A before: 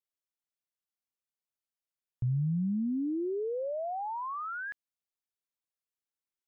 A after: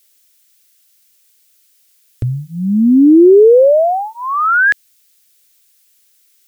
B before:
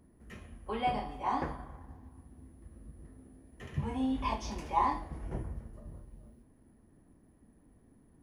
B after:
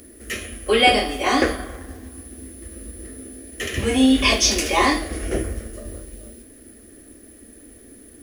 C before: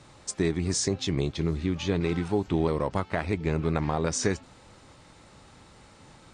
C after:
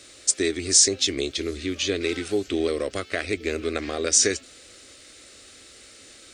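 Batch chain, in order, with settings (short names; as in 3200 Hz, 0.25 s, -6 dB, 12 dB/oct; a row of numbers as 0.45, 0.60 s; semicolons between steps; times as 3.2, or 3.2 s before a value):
tilt +2.5 dB/oct; fixed phaser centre 380 Hz, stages 4; normalise peaks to -2 dBFS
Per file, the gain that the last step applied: +31.0, +24.0, +6.5 dB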